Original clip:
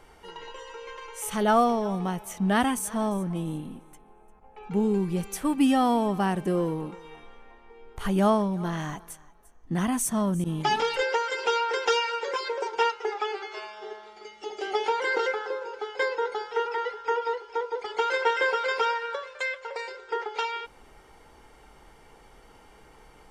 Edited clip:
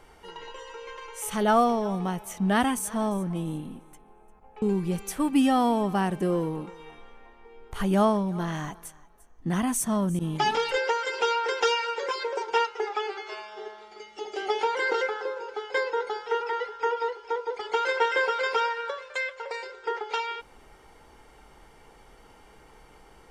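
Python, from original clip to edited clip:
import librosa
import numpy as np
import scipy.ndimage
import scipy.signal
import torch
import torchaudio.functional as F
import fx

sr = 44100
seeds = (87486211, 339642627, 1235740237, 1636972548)

y = fx.edit(x, sr, fx.cut(start_s=4.62, length_s=0.25), tone=tone)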